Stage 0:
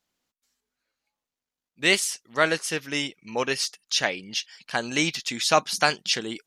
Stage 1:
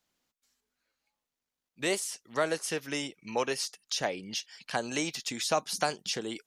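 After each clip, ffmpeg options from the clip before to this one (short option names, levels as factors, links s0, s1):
-filter_complex "[0:a]acrossover=split=420|950|6400[s0][s1][s2][s3];[s0]acompressor=threshold=0.0112:ratio=4[s4];[s1]acompressor=threshold=0.0447:ratio=4[s5];[s2]acompressor=threshold=0.0141:ratio=4[s6];[s3]acompressor=threshold=0.0158:ratio=4[s7];[s4][s5][s6][s7]amix=inputs=4:normalize=0"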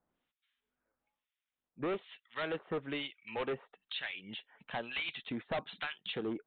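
-filter_complex "[0:a]acrossover=split=1400[s0][s1];[s0]aeval=exprs='val(0)*(1-1/2+1/2*cos(2*PI*1.1*n/s))':c=same[s2];[s1]aeval=exprs='val(0)*(1-1/2-1/2*cos(2*PI*1.1*n/s))':c=same[s3];[s2][s3]amix=inputs=2:normalize=0,aresample=8000,volume=53.1,asoftclip=hard,volume=0.0188,aresample=44100,volume=1.41"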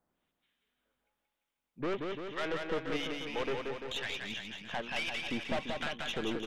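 -af "aeval=exprs='(tanh(50.1*val(0)+0.55)-tanh(0.55))/50.1':c=same,aecho=1:1:180|342|487.8|619|737.1:0.631|0.398|0.251|0.158|0.1,volume=1.68"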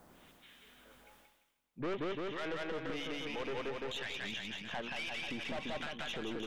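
-af "alimiter=level_in=2.82:limit=0.0631:level=0:latency=1:release=52,volume=0.355,areverse,acompressor=mode=upward:threshold=0.00562:ratio=2.5,areverse,volume=1.26"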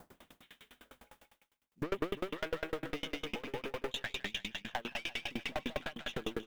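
-af "acrusher=bits=6:mode=log:mix=0:aa=0.000001,aeval=exprs='val(0)*pow(10,-32*if(lt(mod(9.9*n/s,1),2*abs(9.9)/1000),1-mod(9.9*n/s,1)/(2*abs(9.9)/1000),(mod(9.9*n/s,1)-2*abs(9.9)/1000)/(1-2*abs(9.9)/1000))/20)':c=same,volume=2.66"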